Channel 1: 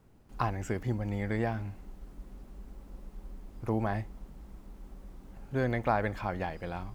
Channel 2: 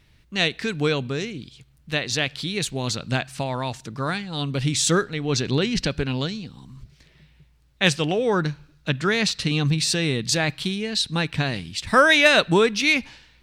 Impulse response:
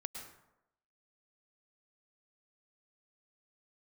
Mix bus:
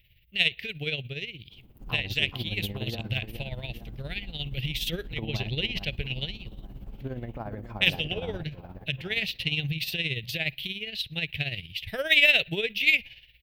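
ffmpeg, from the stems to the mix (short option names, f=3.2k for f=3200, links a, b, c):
-filter_complex "[0:a]tiltshelf=f=770:g=6.5,acompressor=threshold=-36dB:ratio=2.5,adelay=1500,volume=1.5dB,asplit=2[a][b];[b]volume=-8dB[c];[1:a]firequalizer=gain_entry='entry(110,0);entry(250,-18);entry(360,-10);entry(630,-7);entry(1100,-29);entry(2000,0);entry(2900,8);entry(4100,-6);entry(7500,-22);entry(14000,15)':delay=0.05:min_phase=1,aeval=exprs='0.841*(cos(1*acos(clip(val(0)/0.841,-1,1)))-cos(1*PI/2))+0.0133*(cos(4*acos(clip(val(0)/0.841,-1,1)))-cos(4*PI/2))+0.0119*(cos(7*acos(clip(val(0)/0.841,-1,1)))-cos(7*PI/2))':c=same,volume=-1dB[d];[c]aecho=0:1:424|848|1272|1696|2120|2544|2968|3392:1|0.54|0.292|0.157|0.085|0.0459|0.0248|0.0134[e];[a][d][e]amix=inputs=3:normalize=0,tremolo=f=17:d=0.63"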